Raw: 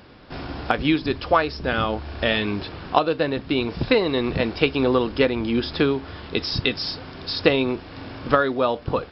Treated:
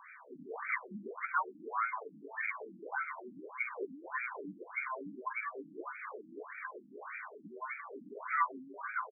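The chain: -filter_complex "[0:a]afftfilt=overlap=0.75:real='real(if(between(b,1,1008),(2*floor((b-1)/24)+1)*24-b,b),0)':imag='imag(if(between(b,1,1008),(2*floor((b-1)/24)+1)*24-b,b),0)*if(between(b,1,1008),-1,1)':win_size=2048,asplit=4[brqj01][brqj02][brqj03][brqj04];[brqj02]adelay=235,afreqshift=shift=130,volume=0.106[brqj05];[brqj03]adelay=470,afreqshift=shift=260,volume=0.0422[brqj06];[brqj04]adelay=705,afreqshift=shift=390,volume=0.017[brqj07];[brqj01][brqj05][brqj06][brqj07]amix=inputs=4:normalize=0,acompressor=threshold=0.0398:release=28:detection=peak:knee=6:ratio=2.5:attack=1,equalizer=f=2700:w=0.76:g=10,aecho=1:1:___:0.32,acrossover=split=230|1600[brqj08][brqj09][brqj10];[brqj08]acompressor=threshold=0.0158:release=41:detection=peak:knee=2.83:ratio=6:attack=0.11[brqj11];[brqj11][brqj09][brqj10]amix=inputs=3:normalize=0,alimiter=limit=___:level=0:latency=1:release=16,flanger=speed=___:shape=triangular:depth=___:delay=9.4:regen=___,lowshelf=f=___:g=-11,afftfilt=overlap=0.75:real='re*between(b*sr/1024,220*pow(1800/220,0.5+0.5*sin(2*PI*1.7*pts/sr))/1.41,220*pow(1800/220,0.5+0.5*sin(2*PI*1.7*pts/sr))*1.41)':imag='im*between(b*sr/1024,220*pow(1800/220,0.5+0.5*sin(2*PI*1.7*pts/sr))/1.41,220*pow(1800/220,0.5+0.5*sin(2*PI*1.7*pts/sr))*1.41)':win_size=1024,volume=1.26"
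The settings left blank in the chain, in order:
1.8, 0.158, 1.1, 1.4, -32, 320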